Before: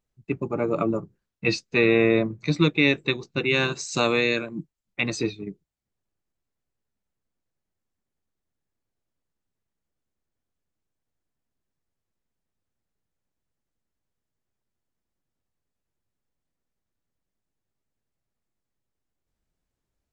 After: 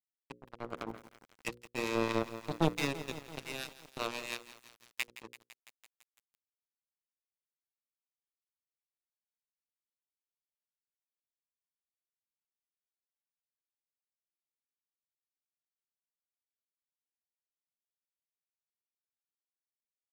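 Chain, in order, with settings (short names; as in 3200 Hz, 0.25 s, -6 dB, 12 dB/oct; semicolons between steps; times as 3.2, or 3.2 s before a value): in parallel at -3.5 dB: wavefolder -15 dBFS; on the sum: HPF 120 Hz 12 dB/oct; speakerphone echo 0.33 s, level -12 dB; power-law curve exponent 2; harmonic tremolo 4.5 Hz, depth 50%, crossover 730 Hz; power-law curve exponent 2; crossover distortion -54.5 dBFS; notches 60/120/180/240/300/360/420/480/540 Hz; lo-fi delay 0.168 s, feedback 80%, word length 7-bit, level -14.5 dB; gain -1.5 dB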